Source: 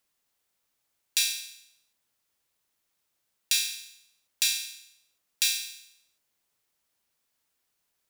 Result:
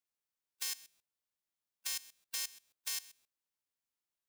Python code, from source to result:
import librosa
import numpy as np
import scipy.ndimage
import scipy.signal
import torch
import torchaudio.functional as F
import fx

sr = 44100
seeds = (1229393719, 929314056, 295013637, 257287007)

y = fx.envelope_flatten(x, sr, power=0.3)
y = fx.stretch_vocoder(y, sr, factor=0.53)
y = fx.level_steps(y, sr, step_db=19)
y = y * 10.0 ** (1.0 / 20.0)